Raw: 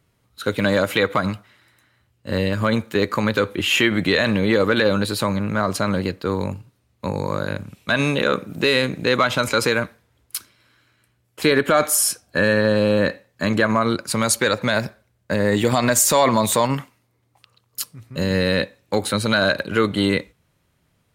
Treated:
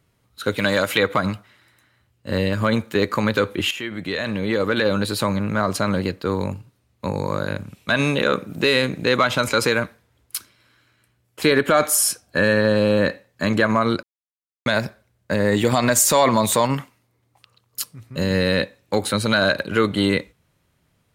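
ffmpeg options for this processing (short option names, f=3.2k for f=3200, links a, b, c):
-filter_complex "[0:a]asettb=1/sr,asplit=3[a][b][c];[a]atrim=end=0.574[d];[b]atrim=start=0.57:end=0.98,asetpts=PTS-STARTPTS,afade=t=in:d=0.004:c=qsin,afade=t=out:st=0.406:d=0.004:c=qsin,tiltshelf=f=970:g=-3.5[e];[c]atrim=start=0.976[f];[d][e]acrossfade=d=0.004:c1=hsin:c2=qsin[g];[g][f]acrossfade=d=0.004:c1=qsin:c2=hsin,asplit=4[h][i][j][k];[h]atrim=end=3.71,asetpts=PTS-STARTPTS,afade=t=out:st=3.706:d=0.004:c=hsin:silence=0.177828[l];[i]atrim=start=3.71:end=14.03,asetpts=PTS-STARTPTS,afade=t=in:d=1.49:silence=0.177828,afade=t=out:st=10.316:d=0.004:c=hsin[m];[j]atrim=start=14.03:end=14.66,asetpts=PTS-STARTPTS,volume=0[n];[k]atrim=start=14.66,asetpts=PTS-STARTPTS,afade=t=in:d=0.004:c=hsin[o];[l][m][n][o]concat=n=4:v=0:a=1"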